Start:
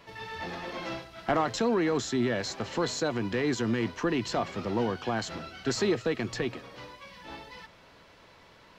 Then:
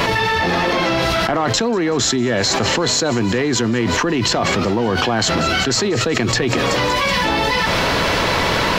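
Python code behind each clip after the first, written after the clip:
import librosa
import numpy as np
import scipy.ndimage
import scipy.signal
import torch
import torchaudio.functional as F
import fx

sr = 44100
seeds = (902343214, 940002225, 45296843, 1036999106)

y = fx.echo_wet_highpass(x, sr, ms=189, feedback_pct=62, hz=4300.0, wet_db=-13)
y = fx.env_flatten(y, sr, amount_pct=100)
y = F.gain(torch.from_numpy(y), 5.0).numpy()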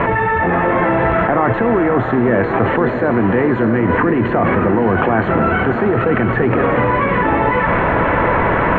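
y = scipy.signal.sosfilt(scipy.signal.cheby2(4, 50, 4800.0, 'lowpass', fs=sr, output='sos'), x)
y = fx.echo_diffused(y, sr, ms=645, feedback_pct=49, wet_db=-6.5)
y = F.gain(torch.from_numpy(y), 3.0).numpy()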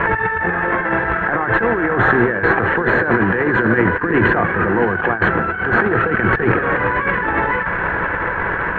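y = fx.graphic_eq_31(x, sr, hz=(125, 250, 630, 1600), db=(-5, -9, -6, 12))
y = fx.over_compress(y, sr, threshold_db=-17.0, ratio=-0.5)
y = F.gain(torch.from_numpy(y), 1.0).numpy()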